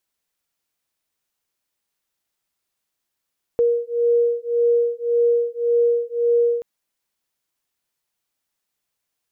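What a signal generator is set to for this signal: beating tones 472 Hz, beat 1.8 Hz, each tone -19 dBFS 3.03 s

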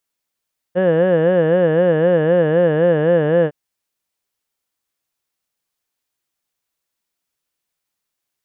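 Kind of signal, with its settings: formant vowel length 2.76 s, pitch 174 Hz, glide -1.5 st, vibrato 3.9 Hz, vibrato depth 1.45 st, F1 520 Hz, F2 1700 Hz, F3 2900 Hz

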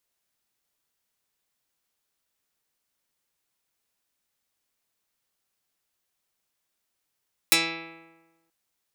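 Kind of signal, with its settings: plucked string E3, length 0.98 s, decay 1.24 s, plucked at 0.11, dark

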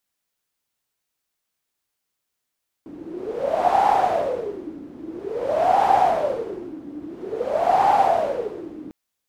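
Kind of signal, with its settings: wind-like swept noise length 6.05 s, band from 290 Hz, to 800 Hz, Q 12, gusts 3, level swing 19.5 dB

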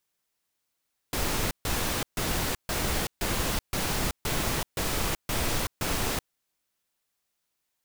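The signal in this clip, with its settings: noise bursts pink, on 0.38 s, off 0.14 s, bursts 10, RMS -28 dBFS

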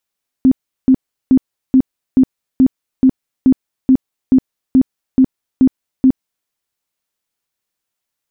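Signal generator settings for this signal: tone bursts 261 Hz, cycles 17, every 0.43 s, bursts 14, -5 dBFS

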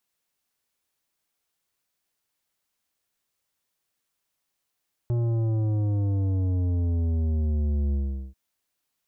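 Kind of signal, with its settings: sub drop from 120 Hz, over 3.24 s, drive 10.5 dB, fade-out 0.41 s, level -23 dB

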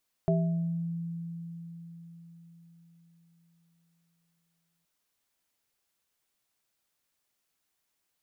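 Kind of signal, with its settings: sine partials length 4.57 s, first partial 168 Hz, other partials 391/654 Hz, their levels -5/-2 dB, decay 4.81 s, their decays 0.53/0.71 s, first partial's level -23 dB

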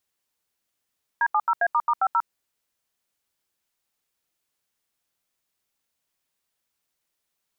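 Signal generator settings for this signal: DTMF "D70A**50", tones 55 ms, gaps 79 ms, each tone -20.5 dBFS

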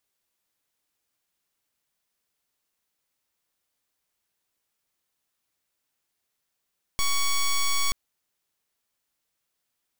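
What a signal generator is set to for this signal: pulse 1120 Hz, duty 8% -22.5 dBFS 0.93 s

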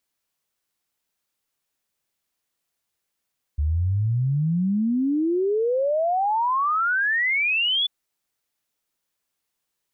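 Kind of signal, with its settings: log sweep 71 Hz -> 3500 Hz 4.29 s -19 dBFS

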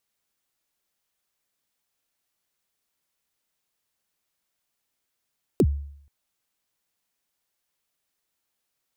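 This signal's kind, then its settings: kick drum length 0.48 s, from 470 Hz, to 71 Hz, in 56 ms, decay 0.66 s, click on, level -12.5 dB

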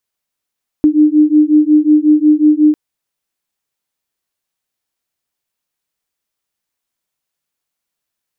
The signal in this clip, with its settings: beating tones 300 Hz, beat 5.5 Hz, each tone -9.5 dBFS 1.90 s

